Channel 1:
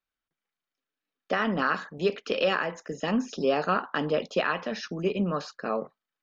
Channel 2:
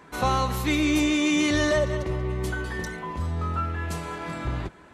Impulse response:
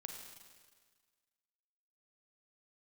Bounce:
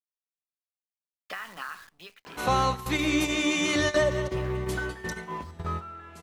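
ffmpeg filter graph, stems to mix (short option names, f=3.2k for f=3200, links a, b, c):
-filter_complex "[0:a]equalizer=f=125:t=o:w=1:g=-8,equalizer=f=250:t=o:w=1:g=-10,equalizer=f=500:t=o:w=1:g=-10,equalizer=f=1k:t=o:w=1:g=7,equalizer=f=2k:t=o:w=1:g=8,equalizer=f=4k:t=o:w=1:g=7,acompressor=threshold=-33dB:ratio=4,acrusher=bits=8:dc=4:mix=0:aa=0.000001,volume=-4dB,afade=t=out:st=1.68:d=0.48:silence=0.266073,afade=t=out:st=4.72:d=0.29:silence=0.446684,asplit=2[a][b];[1:a]lowshelf=f=61:g=-9.5,bandreject=f=50:t=h:w=6,bandreject=f=100:t=h:w=6,bandreject=f=150:t=h:w=6,bandreject=f=200:t=h:w=6,bandreject=f=250:t=h:w=6,bandreject=f=300:t=h:w=6,acompressor=mode=upward:threshold=-38dB:ratio=2.5,adelay=2250,volume=-1.5dB,asplit=2[c][d];[d]volume=-9dB[e];[b]apad=whole_len=316812[f];[c][f]sidechaingate=range=-33dB:threshold=-59dB:ratio=16:detection=peak[g];[2:a]atrim=start_sample=2205[h];[e][h]afir=irnorm=-1:irlink=0[i];[a][g][i]amix=inputs=3:normalize=0"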